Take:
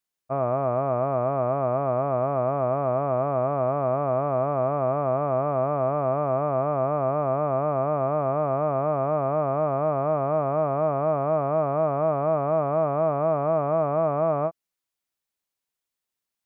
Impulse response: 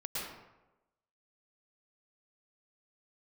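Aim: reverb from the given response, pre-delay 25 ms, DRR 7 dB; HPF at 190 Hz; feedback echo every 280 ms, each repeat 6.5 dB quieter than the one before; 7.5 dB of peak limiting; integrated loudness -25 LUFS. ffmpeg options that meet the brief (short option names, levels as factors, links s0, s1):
-filter_complex "[0:a]highpass=190,alimiter=limit=0.0891:level=0:latency=1,aecho=1:1:280|560|840|1120|1400|1680:0.473|0.222|0.105|0.0491|0.0231|0.0109,asplit=2[s0][s1];[1:a]atrim=start_sample=2205,adelay=25[s2];[s1][s2]afir=irnorm=-1:irlink=0,volume=0.316[s3];[s0][s3]amix=inputs=2:normalize=0,volume=1.41"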